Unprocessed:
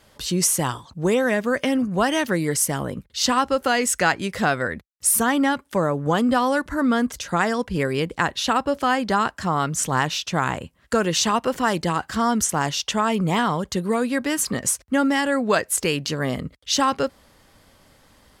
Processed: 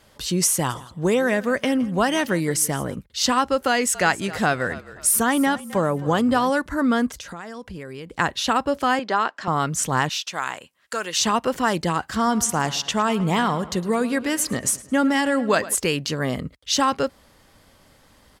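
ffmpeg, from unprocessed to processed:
ffmpeg -i in.wav -filter_complex "[0:a]asplit=3[link_01][link_02][link_03];[link_01]afade=type=out:start_time=0.69:duration=0.02[link_04];[link_02]aecho=1:1:166|332:0.106|0.0191,afade=type=in:start_time=0.69:duration=0.02,afade=type=out:start_time=2.94:duration=0.02[link_05];[link_03]afade=type=in:start_time=2.94:duration=0.02[link_06];[link_04][link_05][link_06]amix=inputs=3:normalize=0,asettb=1/sr,asplit=3[link_07][link_08][link_09];[link_07]atrim=end=3.684[link_10];[link_08]atrim=start=3.68:end=6.5,asetpts=PTS-STARTPTS,afade=type=in:duration=0.004:curve=qsin,afade=type=out:start_time=2.816:duration=0.004:curve=qsin,asplit=4[link_11][link_12][link_13][link_14];[link_12]adelay=264,afreqshift=-44,volume=-17dB[link_15];[link_13]adelay=528,afreqshift=-88,volume=-25.9dB[link_16];[link_14]adelay=792,afreqshift=-132,volume=-34.7dB[link_17];[link_11][link_15][link_16][link_17]amix=inputs=4:normalize=0,atrim=end_sample=124362[link_18];[link_09]atrim=start=6.496[link_19];[link_10][link_18]acrossfade=duration=0.004:curve1=hsin:curve2=qsin[link_20];[link_20][link_19]acrossfade=duration=0.004:curve1=qsin:curve2=hsin,asettb=1/sr,asplit=3[link_21][link_22][link_23];[link_21]atrim=end=7.114[link_24];[link_22]atrim=start=7.11:end=8.15,asetpts=PTS-STARTPTS,afade=type=in:duration=0.004:curve=qsin,afade=type=out:start_time=1.036:duration=0.004:curve=qsin,acompressor=threshold=-33dB:ratio=5:attack=3.2:release=140:knee=1:detection=peak[link_25];[link_23]atrim=start=8.146[link_26];[link_24][link_25]acrossfade=duration=0.004:curve1=hsin:curve2=qsin[link_27];[link_27][link_26]acrossfade=duration=0.004:curve1=qsin:curve2=hsin,asettb=1/sr,asplit=3[link_28][link_29][link_30];[link_28]atrim=end=8.994[link_31];[link_29]atrim=start=8.99:end=9.48,asetpts=PTS-STARTPTS,afade=type=in:duration=0.004:curve=qsin,afade=type=out:start_time=0.486:duration=0.004:curve=qsin,highpass=350,lowpass=4700[link_32];[link_30]atrim=start=9.476[link_33];[link_31][link_32]acrossfade=duration=0.004:curve1=hsin:curve2=qsin[link_34];[link_34][link_33]acrossfade=duration=0.004:curve1=qsin:curve2=hsin,asettb=1/sr,asplit=3[link_35][link_36][link_37];[link_35]atrim=end=10.094[link_38];[link_36]atrim=start=10.09:end=11.2,asetpts=PTS-STARTPTS,afade=type=in:duration=0.004:curve=qsin,afade=type=out:start_time=1.106:duration=0.004:curve=qsin,highpass=frequency=1300:poles=1[link_39];[link_37]atrim=start=11.196[link_40];[link_38][link_39]acrossfade=duration=0.004:curve1=hsin:curve2=qsin[link_41];[link_41][link_40]acrossfade=duration=0.004:curve1=qsin:curve2=hsin,asettb=1/sr,asplit=3[link_42][link_43][link_44];[link_42]atrim=end=12.084[link_45];[link_43]atrim=start=12.08:end=15.75,asetpts=PTS-STARTPTS,afade=type=in:duration=0.004:curve=qsin,afade=type=out:start_time=3.666:duration=0.004:curve=qsin,asplit=2[link_46][link_47];[link_47]adelay=108,lowpass=frequency=4600:poles=1,volume=-16dB,asplit=2[link_48][link_49];[link_49]adelay=108,lowpass=frequency=4600:poles=1,volume=0.53,asplit=2[link_50][link_51];[link_51]adelay=108,lowpass=frequency=4600:poles=1,volume=0.53,asplit=2[link_52][link_53];[link_53]adelay=108,lowpass=frequency=4600:poles=1,volume=0.53,asplit=2[link_54][link_55];[link_55]adelay=108,lowpass=frequency=4600:poles=1,volume=0.53[link_56];[link_46][link_48][link_50][link_52][link_54][link_56]amix=inputs=6:normalize=0,atrim=end_sample=161847[link_57];[link_44]atrim=start=15.746[link_58];[link_45][link_57]acrossfade=duration=0.004:curve1=hsin:curve2=qsin[link_59];[link_59][link_58]acrossfade=duration=0.004:curve1=qsin:curve2=hsin" out.wav

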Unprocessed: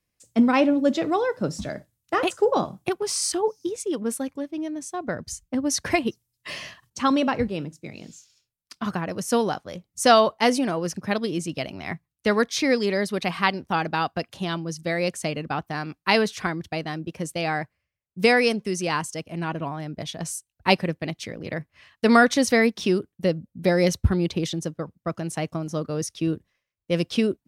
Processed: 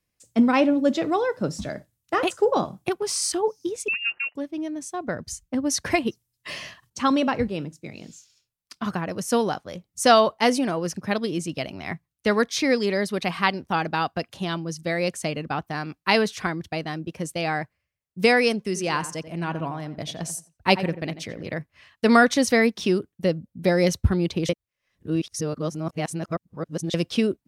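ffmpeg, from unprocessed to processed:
ffmpeg -i in.wav -filter_complex "[0:a]asettb=1/sr,asplit=3[link_01][link_02][link_03];[link_01]atrim=end=3.884[link_04];[link_02]atrim=start=3.88:end=4.35,asetpts=PTS-STARTPTS,afade=type=in:duration=0.004:curve=qsin,afade=type=out:start_time=0.466:duration=0.004:curve=qsin,lowpass=frequency=2600:width_type=q:width=0.5098,lowpass=frequency=2600:width_type=q:width=0.6013,lowpass=frequency=2600:width_type=q:width=0.9,lowpass=frequency=2600:width_type=q:width=2.563,afreqshift=-3000[link_05];[link_03]atrim=start=4.346[link_06];[link_04][link_05]acrossfade=duration=0.004:curve1=hsin:curve2=qsin[link_07];[link_07][link_06]acrossfade=duration=0.004:curve1=qsin:curve2=hsin,asettb=1/sr,asplit=3[link_08][link_09][link_10];[link_08]atrim=end=18.664[link_11];[link_09]atrim=start=18.66:end=21.47,asetpts=PTS-STARTPTS,afade=type=in:duration=0.004:curve=qsin,afade=type=out:start_time=2.806:duration=0.004:curve=qsin,asplit=2[link_12][link_13];[link_13]adelay=88,lowpass=frequency=1900:poles=1,volume=-12dB,asplit=2[link_14][link_15];[link_15]adelay=88,lowpass=frequency=1900:poles=1,volume=0.29,asplit=2[link_16][link_17];[link_17]adelay=88,lowpass=frequency=1900:poles=1,volume=0.29[link_18];[link_12][link_14][link_16][link_18]amix=inputs=4:normalize=0,atrim=end_sample=123921[link_19];[link_10]atrim=start=21.466[link_20];[link_11][link_19]acrossfade=duration=0.004:curve1=hsin:curve2=qsin[link_21];[link_21][link_20]acrossfade=duration=0.004:curve1=qsin:curve2=hsin,asplit=3[link_22][link_23][link_24];[link_22]atrim=end=24.492[link_25];[link_23]atrim=start=24.488:end=26.942,asetpts=PTS-STARTPTS,areverse[link_26];[link_24]atrim=start=26.938[link_27];[link_25][link_26]acrossfade=duration=0.004:curve1=hsin:curve2=hsin[link_28];[link_28][link_27]acrossfade=duration=0.004:curve1=hsin:curve2=hsin" out.wav

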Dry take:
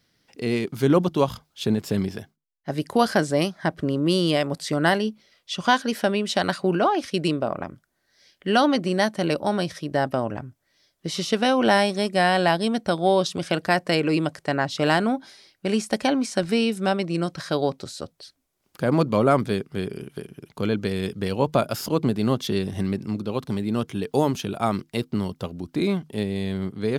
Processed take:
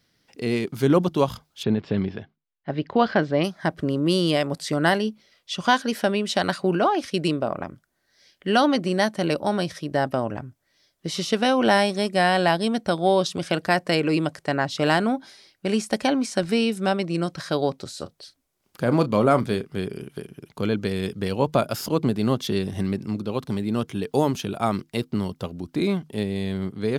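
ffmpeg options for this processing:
ffmpeg -i in.wav -filter_complex "[0:a]asplit=3[link_01][link_02][link_03];[link_01]afade=type=out:start_time=1.62:duration=0.02[link_04];[link_02]lowpass=frequency=3700:width=0.5412,lowpass=frequency=3700:width=1.3066,afade=type=in:start_time=1.62:duration=0.02,afade=type=out:start_time=3.43:duration=0.02[link_05];[link_03]afade=type=in:start_time=3.43:duration=0.02[link_06];[link_04][link_05][link_06]amix=inputs=3:normalize=0,asettb=1/sr,asplit=3[link_07][link_08][link_09];[link_07]atrim=end=17.914[link_10];[link_08]atrim=start=17.91:end=19.73,asetpts=PTS-STARTPTS,afade=type=in:duration=0.004:curve=qsin,afade=type=out:start_time=1.816:duration=0.004:curve=qsin,asplit=2[link_11][link_12];[link_12]adelay=33,volume=-13dB[link_13];[link_11][link_13]amix=inputs=2:normalize=0,atrim=end_sample=80262[link_14];[link_09]atrim=start=19.726[link_15];[link_10][link_14]acrossfade=duration=0.004:curve1=hsin:curve2=qsin[link_16];[link_16][link_15]acrossfade=duration=0.004:curve1=qsin:curve2=hsin" out.wav

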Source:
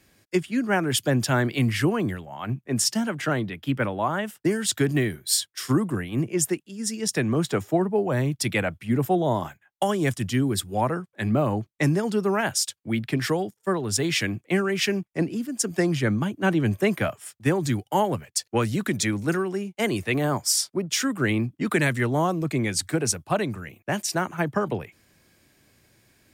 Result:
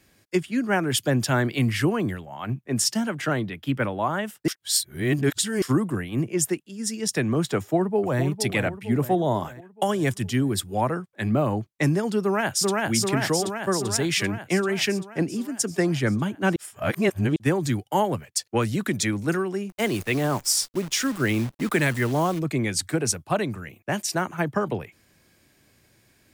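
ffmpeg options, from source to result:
ffmpeg -i in.wav -filter_complex "[0:a]asplit=2[link_01][link_02];[link_02]afade=type=in:start_time=7.57:duration=0.01,afade=type=out:start_time=8.22:duration=0.01,aecho=0:1:460|920|1380|1840|2300|2760:0.334965|0.184231|0.101327|0.0557299|0.0306514|0.0168583[link_03];[link_01][link_03]amix=inputs=2:normalize=0,asplit=2[link_04][link_05];[link_05]afade=type=in:start_time=12.22:duration=0.01,afade=type=out:start_time=12.8:duration=0.01,aecho=0:1:390|780|1170|1560|1950|2340|2730|3120|3510|3900|4290|4680:0.891251|0.623876|0.436713|0.305699|0.213989|0.149793|0.104855|0.0733983|0.0513788|0.0359652|0.0251756|0.0176229[link_06];[link_04][link_06]amix=inputs=2:normalize=0,asplit=3[link_07][link_08][link_09];[link_07]afade=type=out:start_time=19.69:duration=0.02[link_10];[link_08]acrusher=bits=7:dc=4:mix=0:aa=0.000001,afade=type=in:start_time=19.69:duration=0.02,afade=type=out:start_time=22.38:duration=0.02[link_11];[link_09]afade=type=in:start_time=22.38:duration=0.02[link_12];[link_10][link_11][link_12]amix=inputs=3:normalize=0,asplit=5[link_13][link_14][link_15][link_16][link_17];[link_13]atrim=end=4.482[link_18];[link_14]atrim=start=4.478:end=5.622,asetpts=PTS-STARTPTS,areverse[link_19];[link_15]atrim=start=5.618:end=16.562[link_20];[link_16]atrim=start=16.558:end=17.362,asetpts=PTS-STARTPTS,areverse[link_21];[link_17]atrim=start=17.358[link_22];[link_18][link_19]acrossfade=duration=0.004:curve1=hsin:curve2=hsin[link_23];[link_23][link_20]acrossfade=duration=0.004:curve1=hsin:curve2=hsin[link_24];[link_24][link_21]acrossfade=duration=0.004:curve1=hsin:curve2=hsin[link_25];[link_25][link_22]acrossfade=duration=0.004:curve1=hsin:curve2=hsin" out.wav

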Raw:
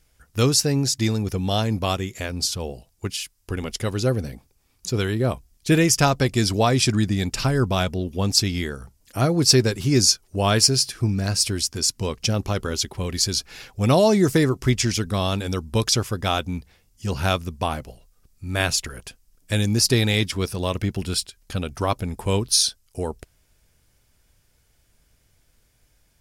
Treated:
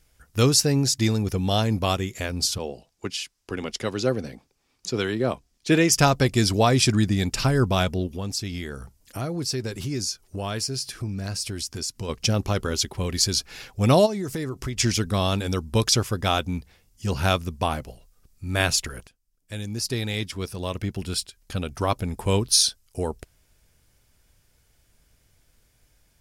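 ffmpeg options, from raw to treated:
ffmpeg -i in.wav -filter_complex "[0:a]asettb=1/sr,asplit=3[link_01][link_02][link_03];[link_01]atrim=end=2.584[link_04];[link_02]atrim=start=2.58:end=5.92,asetpts=PTS-STARTPTS,afade=type=in:duration=0.004:curve=qsin,afade=type=out:start_time=3.336:duration=0.004:curve=qsin,acrossover=split=170 7500:gain=0.251 1 0.224[link_05][link_06][link_07];[link_05][link_06][link_07]amix=inputs=3:normalize=0[link_08];[link_03]atrim=start=5.916[link_09];[link_04][link_08]acrossfade=duration=0.004:curve1=hsin:curve2=qsin[link_10];[link_10][link_09]acrossfade=duration=0.004:curve1=qsin:curve2=hsin,asplit=3[link_11][link_12][link_13];[link_11]afade=type=out:start_time=8.06:duration=0.02[link_14];[link_12]acompressor=threshold=-30dB:ratio=2.5:attack=3.2:release=140:knee=1:detection=peak,afade=type=in:start_time=8.06:duration=0.02,afade=type=out:start_time=12.08:duration=0.02[link_15];[link_13]afade=type=in:start_time=12.08:duration=0.02[link_16];[link_14][link_15][link_16]amix=inputs=3:normalize=0,asplit=3[link_17][link_18][link_19];[link_17]afade=type=out:start_time=14.05:duration=0.02[link_20];[link_18]acompressor=threshold=-28dB:ratio=4:attack=3.2:release=140:knee=1:detection=peak,afade=type=in:start_time=14.05:duration=0.02,afade=type=out:start_time=14.76:duration=0.02[link_21];[link_19]afade=type=in:start_time=14.76:duration=0.02[link_22];[link_20][link_21][link_22]amix=inputs=3:normalize=0,asplit=2[link_23][link_24];[link_23]atrim=end=19.07,asetpts=PTS-STARTPTS,afade=type=out:start_time=19.066:duration=0.004:curve=hsin:silence=0.125893[link_25];[link_24]atrim=start=19.07,asetpts=PTS-STARTPTS,afade=type=in:duration=3.19:silence=0.125893[link_26];[link_25][link_26]concat=n=2:v=0:a=1" out.wav

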